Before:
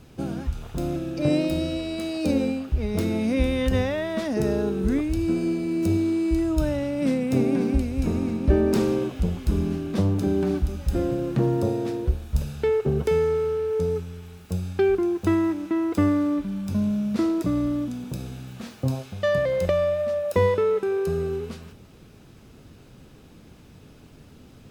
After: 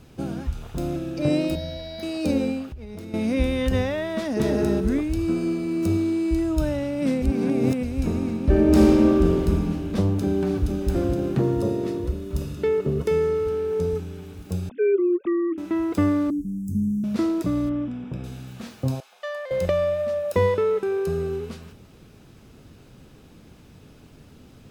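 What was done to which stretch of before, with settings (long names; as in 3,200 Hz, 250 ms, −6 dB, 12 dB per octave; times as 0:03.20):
0:01.55–0:02.03: phaser with its sweep stopped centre 1,800 Hz, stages 8
0:02.68–0:03.14: downward compressor, threshold −34 dBFS
0:04.16–0:04.57: delay throw 230 ms, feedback 20%, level −1.5 dB
0:05.18–0:06.04: parametric band 1,200 Hz +9 dB 0.2 octaves
0:07.22–0:07.83: reverse
0:08.48–0:09.41: thrown reverb, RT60 2.5 s, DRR −2 dB
0:10.09–0:10.67: delay throw 470 ms, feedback 80%, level −6 dB
0:11.41–0:13.47: notch comb filter 790 Hz
0:14.69–0:15.58: three sine waves on the formant tracks
0:16.30–0:17.04: inverse Chebyshev band-stop filter 600–4,000 Hz
0:17.69–0:18.24: Savitzky-Golay smoothing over 25 samples
0:19.00–0:19.51: four-pole ladder high-pass 620 Hz, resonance 30%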